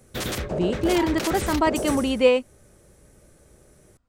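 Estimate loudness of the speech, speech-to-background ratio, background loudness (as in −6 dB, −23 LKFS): −23.0 LKFS, 6.5 dB, −29.5 LKFS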